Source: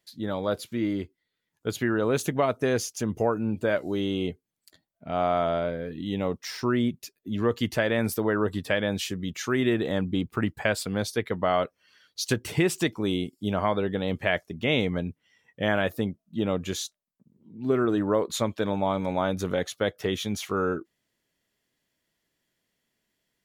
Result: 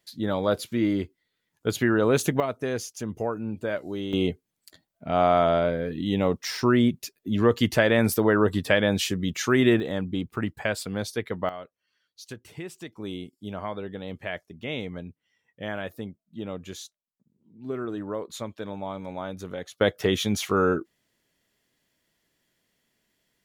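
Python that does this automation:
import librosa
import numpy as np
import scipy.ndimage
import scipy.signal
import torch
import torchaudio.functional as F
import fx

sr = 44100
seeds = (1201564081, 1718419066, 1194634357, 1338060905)

y = fx.gain(x, sr, db=fx.steps((0.0, 3.5), (2.4, -4.0), (4.13, 4.5), (9.8, -2.0), (11.49, -14.5), (12.96, -8.0), (19.81, 4.5)))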